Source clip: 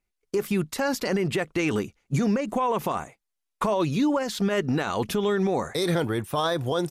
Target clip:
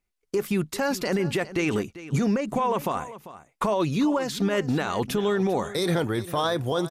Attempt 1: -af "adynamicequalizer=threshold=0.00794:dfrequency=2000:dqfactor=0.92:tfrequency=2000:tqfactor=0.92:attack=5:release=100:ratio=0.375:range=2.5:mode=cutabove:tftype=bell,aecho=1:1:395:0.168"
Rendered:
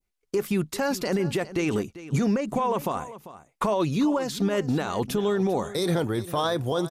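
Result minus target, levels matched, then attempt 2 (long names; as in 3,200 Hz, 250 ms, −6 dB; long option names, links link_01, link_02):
2,000 Hz band −2.5 dB
-af "aecho=1:1:395:0.168"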